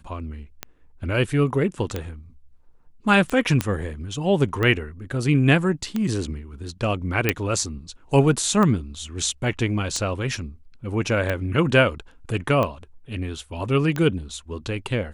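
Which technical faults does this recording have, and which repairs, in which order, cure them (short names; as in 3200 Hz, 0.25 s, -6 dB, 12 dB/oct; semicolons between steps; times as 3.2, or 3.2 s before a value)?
tick 45 rpm -12 dBFS
3.61 pop -7 dBFS
7.29 pop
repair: de-click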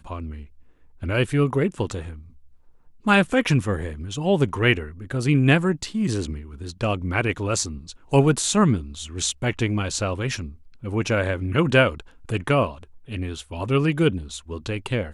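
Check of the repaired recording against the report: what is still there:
none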